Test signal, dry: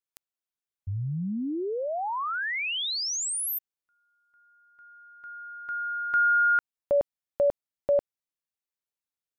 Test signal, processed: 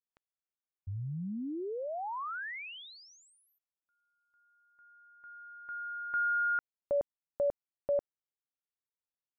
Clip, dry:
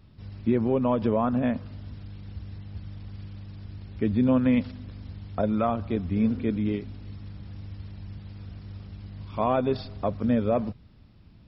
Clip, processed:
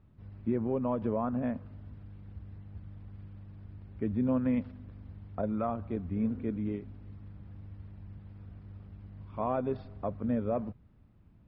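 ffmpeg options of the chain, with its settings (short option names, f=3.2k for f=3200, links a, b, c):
-af "lowpass=1.8k,volume=-7dB"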